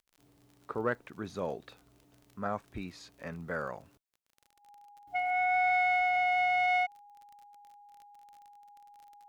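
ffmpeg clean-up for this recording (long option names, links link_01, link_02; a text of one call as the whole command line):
ffmpeg -i in.wav -af "adeclick=threshold=4,bandreject=frequency=820:width=30" out.wav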